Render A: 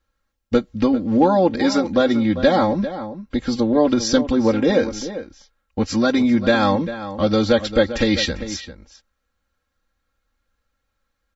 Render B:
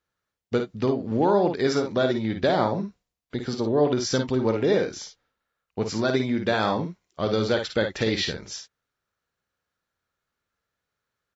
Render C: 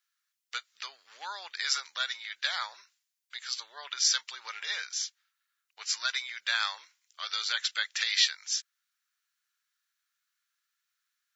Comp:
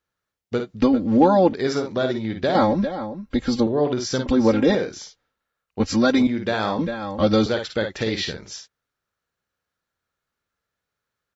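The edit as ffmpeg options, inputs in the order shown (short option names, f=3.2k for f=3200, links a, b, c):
-filter_complex "[0:a]asplit=5[a][b][c][d][e];[1:a]asplit=6[f][g][h][i][j][k];[f]atrim=end=0.822[l];[a]atrim=start=0.818:end=1.532[m];[g]atrim=start=1.528:end=2.552[n];[b]atrim=start=2.548:end=3.672[o];[h]atrim=start=3.668:end=4.262[p];[c]atrim=start=4.258:end=4.752[q];[i]atrim=start=4.748:end=5.802[r];[d]atrim=start=5.798:end=6.272[s];[j]atrim=start=6.268:end=6.792[t];[e]atrim=start=6.788:end=7.462[u];[k]atrim=start=7.458[v];[l][m]acrossfade=d=0.004:c1=hsin:c2=hsin[w];[w][n]acrossfade=d=0.004:c1=hsin:c2=hsin[x];[x][o]acrossfade=d=0.004:c1=hsin:c2=hsin[y];[y][p]acrossfade=d=0.004:c1=hsin:c2=hsin[z];[z][q]acrossfade=d=0.004:c1=hsin:c2=hsin[aa];[aa][r]acrossfade=d=0.004:c1=hsin:c2=hsin[ab];[ab][s]acrossfade=d=0.004:c1=hsin:c2=hsin[ac];[ac][t]acrossfade=d=0.004:c1=hsin:c2=hsin[ad];[ad][u]acrossfade=d=0.004:c1=hsin:c2=hsin[ae];[ae][v]acrossfade=d=0.004:c1=hsin:c2=hsin"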